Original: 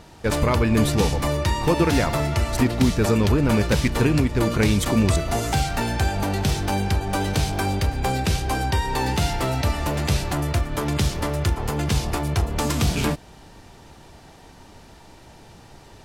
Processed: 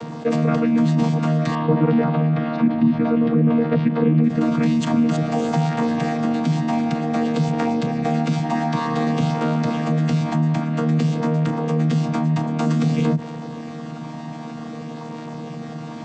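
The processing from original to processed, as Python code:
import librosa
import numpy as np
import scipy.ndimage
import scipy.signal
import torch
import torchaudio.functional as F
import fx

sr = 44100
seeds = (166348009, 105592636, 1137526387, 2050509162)

y = fx.chord_vocoder(x, sr, chord='bare fifth', root=51)
y = fx.bessel_lowpass(y, sr, hz=2600.0, order=6, at=(1.55, 4.24))
y = fx.env_flatten(y, sr, amount_pct=50)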